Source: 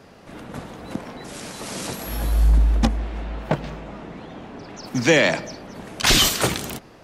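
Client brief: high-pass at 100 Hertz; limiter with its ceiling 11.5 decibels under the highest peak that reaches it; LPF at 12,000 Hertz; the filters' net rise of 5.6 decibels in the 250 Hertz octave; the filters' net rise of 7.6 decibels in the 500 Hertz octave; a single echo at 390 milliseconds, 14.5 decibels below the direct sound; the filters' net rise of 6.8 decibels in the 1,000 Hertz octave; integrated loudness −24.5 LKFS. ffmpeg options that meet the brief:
ffmpeg -i in.wav -af "highpass=100,lowpass=12000,equalizer=frequency=250:width_type=o:gain=5,equalizer=frequency=500:width_type=o:gain=6,equalizer=frequency=1000:width_type=o:gain=6.5,alimiter=limit=-11.5dB:level=0:latency=1,aecho=1:1:390:0.188,volume=1dB" out.wav

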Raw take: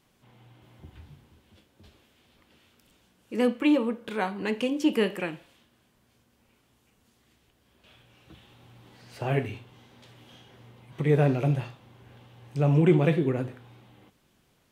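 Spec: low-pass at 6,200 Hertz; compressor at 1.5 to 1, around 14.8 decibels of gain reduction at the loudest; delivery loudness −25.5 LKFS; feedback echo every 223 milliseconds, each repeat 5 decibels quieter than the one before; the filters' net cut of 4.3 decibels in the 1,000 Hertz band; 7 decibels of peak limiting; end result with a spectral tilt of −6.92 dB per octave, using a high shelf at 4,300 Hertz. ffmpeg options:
ffmpeg -i in.wav -af "lowpass=6200,equalizer=frequency=1000:width_type=o:gain=-6,highshelf=frequency=4300:gain=-8.5,acompressor=threshold=-60dB:ratio=1.5,alimiter=level_in=7.5dB:limit=-24dB:level=0:latency=1,volume=-7.5dB,aecho=1:1:223|446|669|892|1115|1338|1561:0.562|0.315|0.176|0.0988|0.0553|0.031|0.0173,volume=17dB" out.wav

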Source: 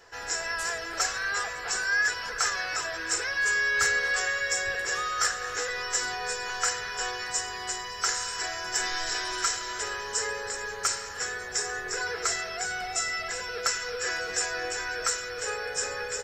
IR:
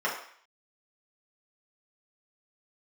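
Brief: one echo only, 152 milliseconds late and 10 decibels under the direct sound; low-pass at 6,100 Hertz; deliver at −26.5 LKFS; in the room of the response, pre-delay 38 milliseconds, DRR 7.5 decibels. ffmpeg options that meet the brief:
-filter_complex "[0:a]lowpass=6100,aecho=1:1:152:0.316,asplit=2[link_01][link_02];[1:a]atrim=start_sample=2205,adelay=38[link_03];[link_02][link_03]afir=irnorm=-1:irlink=0,volume=-18.5dB[link_04];[link_01][link_04]amix=inputs=2:normalize=0,volume=2dB"

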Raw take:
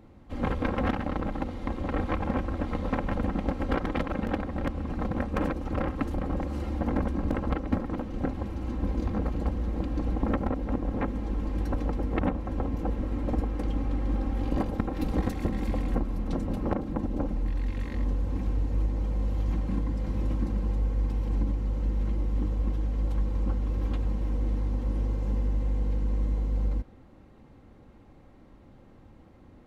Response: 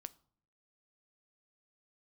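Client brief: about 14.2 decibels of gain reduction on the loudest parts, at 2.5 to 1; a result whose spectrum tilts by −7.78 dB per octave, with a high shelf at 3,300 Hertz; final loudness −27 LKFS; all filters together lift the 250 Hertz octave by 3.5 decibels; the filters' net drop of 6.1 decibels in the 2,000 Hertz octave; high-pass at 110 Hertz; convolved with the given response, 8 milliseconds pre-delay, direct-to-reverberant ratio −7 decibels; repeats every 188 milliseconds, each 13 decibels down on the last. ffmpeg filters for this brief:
-filter_complex "[0:a]highpass=110,equalizer=frequency=250:width_type=o:gain=4.5,equalizer=frequency=2000:width_type=o:gain=-6.5,highshelf=frequency=3300:gain=-5,acompressor=threshold=-41dB:ratio=2.5,aecho=1:1:188|376|564:0.224|0.0493|0.0108,asplit=2[link_01][link_02];[1:a]atrim=start_sample=2205,adelay=8[link_03];[link_02][link_03]afir=irnorm=-1:irlink=0,volume=12dB[link_04];[link_01][link_04]amix=inputs=2:normalize=0,volume=6dB"

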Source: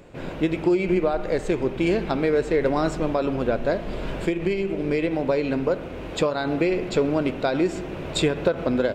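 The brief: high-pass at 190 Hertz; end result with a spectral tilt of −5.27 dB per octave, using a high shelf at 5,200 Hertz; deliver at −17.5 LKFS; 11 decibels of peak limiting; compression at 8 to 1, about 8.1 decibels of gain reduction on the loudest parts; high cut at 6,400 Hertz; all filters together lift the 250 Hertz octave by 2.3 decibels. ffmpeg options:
ffmpeg -i in.wav -af "highpass=190,lowpass=6400,equalizer=frequency=250:width_type=o:gain=4.5,highshelf=frequency=5200:gain=-8.5,acompressor=threshold=-23dB:ratio=8,volume=13.5dB,alimiter=limit=-8.5dB:level=0:latency=1" out.wav

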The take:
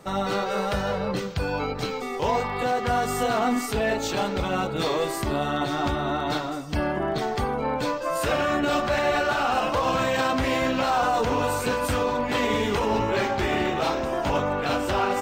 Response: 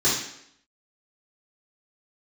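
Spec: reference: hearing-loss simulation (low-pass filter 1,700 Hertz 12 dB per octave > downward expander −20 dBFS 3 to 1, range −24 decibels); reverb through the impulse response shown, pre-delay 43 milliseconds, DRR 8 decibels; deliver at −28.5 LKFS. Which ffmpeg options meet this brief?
-filter_complex "[0:a]asplit=2[link_01][link_02];[1:a]atrim=start_sample=2205,adelay=43[link_03];[link_02][link_03]afir=irnorm=-1:irlink=0,volume=-23dB[link_04];[link_01][link_04]amix=inputs=2:normalize=0,lowpass=1700,agate=range=-24dB:threshold=-20dB:ratio=3,volume=-1.5dB"

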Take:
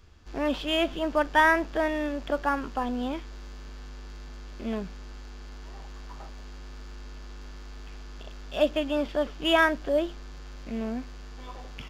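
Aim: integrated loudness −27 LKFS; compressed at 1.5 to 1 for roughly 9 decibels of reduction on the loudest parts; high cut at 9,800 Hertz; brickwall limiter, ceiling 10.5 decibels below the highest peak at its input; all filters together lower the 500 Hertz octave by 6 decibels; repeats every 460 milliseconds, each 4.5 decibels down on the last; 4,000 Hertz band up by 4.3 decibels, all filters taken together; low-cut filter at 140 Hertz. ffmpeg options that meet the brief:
ffmpeg -i in.wav -af "highpass=140,lowpass=9800,equalizer=frequency=500:width_type=o:gain=-8.5,equalizer=frequency=4000:width_type=o:gain=6.5,acompressor=threshold=-42dB:ratio=1.5,alimiter=level_in=4.5dB:limit=-24dB:level=0:latency=1,volume=-4.5dB,aecho=1:1:460|920|1380|1840|2300|2760|3220|3680|4140:0.596|0.357|0.214|0.129|0.0772|0.0463|0.0278|0.0167|0.01,volume=12.5dB" out.wav

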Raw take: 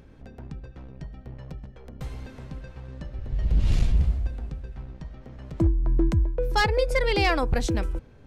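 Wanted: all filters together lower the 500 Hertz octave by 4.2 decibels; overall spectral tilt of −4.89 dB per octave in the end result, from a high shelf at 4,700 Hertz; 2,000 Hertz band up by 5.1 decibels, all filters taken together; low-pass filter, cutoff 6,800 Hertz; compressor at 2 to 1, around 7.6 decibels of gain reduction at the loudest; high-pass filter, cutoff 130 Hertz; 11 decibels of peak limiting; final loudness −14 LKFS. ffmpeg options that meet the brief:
ffmpeg -i in.wav -af "highpass=130,lowpass=6800,equalizer=frequency=500:width_type=o:gain=-5,equalizer=frequency=2000:width_type=o:gain=7,highshelf=frequency=4700:gain=-4,acompressor=threshold=-31dB:ratio=2,volume=26.5dB,alimiter=limit=-1.5dB:level=0:latency=1" out.wav

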